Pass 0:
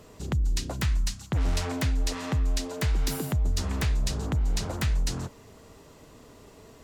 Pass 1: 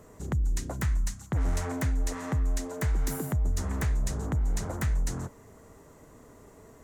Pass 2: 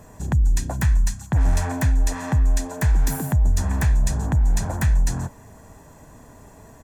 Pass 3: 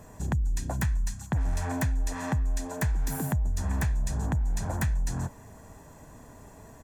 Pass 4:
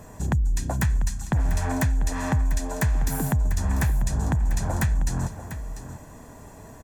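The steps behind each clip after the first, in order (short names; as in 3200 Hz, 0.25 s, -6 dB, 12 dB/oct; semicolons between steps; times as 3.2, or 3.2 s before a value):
band shelf 3600 Hz -10 dB 1.3 oct; gain -1.5 dB
comb 1.2 ms, depth 49%; gain +6 dB
compressor, threshold -21 dBFS, peak gain reduction 7.5 dB; gain -3 dB
echo 0.694 s -12 dB; gain +4.5 dB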